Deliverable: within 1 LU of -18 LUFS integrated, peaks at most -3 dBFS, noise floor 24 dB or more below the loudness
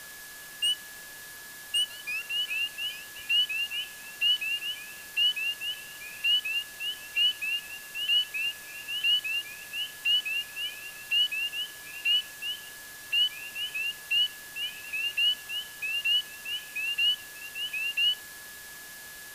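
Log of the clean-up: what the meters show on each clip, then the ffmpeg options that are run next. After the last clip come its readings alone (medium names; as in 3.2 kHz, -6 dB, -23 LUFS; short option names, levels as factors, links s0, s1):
steady tone 1.7 kHz; tone level -46 dBFS; noise floor -45 dBFS; noise floor target -52 dBFS; loudness -27.5 LUFS; peak level -17.0 dBFS; loudness target -18.0 LUFS
-> -af "bandreject=f=1700:w=30"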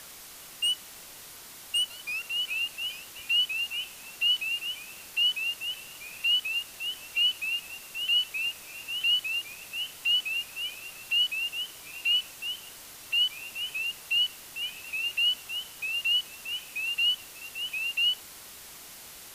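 steady tone not found; noise floor -47 dBFS; noise floor target -52 dBFS
-> -af "afftdn=nr=6:nf=-47"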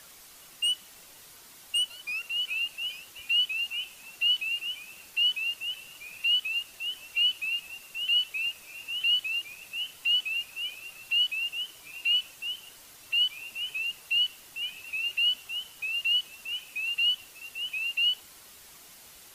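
noise floor -52 dBFS; loudness -27.5 LUFS; peak level -17.5 dBFS; loudness target -18.0 LUFS
-> -af "volume=2.99"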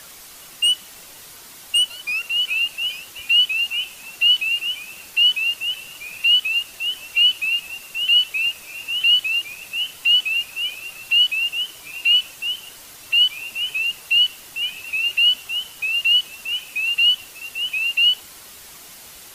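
loudness -18.0 LUFS; peak level -8.0 dBFS; noise floor -42 dBFS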